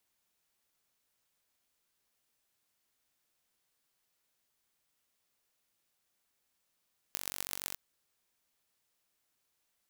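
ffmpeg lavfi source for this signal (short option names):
-f lavfi -i "aevalsrc='0.473*eq(mod(n,938),0)*(0.5+0.5*eq(mod(n,5628),0))':d=0.61:s=44100"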